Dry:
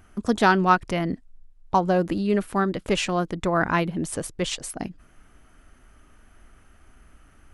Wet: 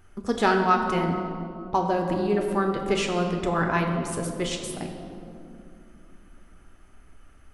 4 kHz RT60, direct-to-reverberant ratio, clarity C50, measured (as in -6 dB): 1.3 s, 2.0 dB, 4.5 dB